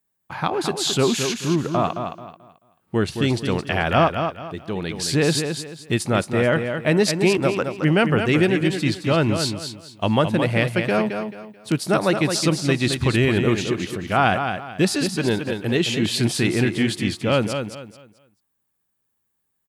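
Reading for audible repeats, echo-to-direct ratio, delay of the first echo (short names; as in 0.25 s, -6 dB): 3, -6.5 dB, 0.218 s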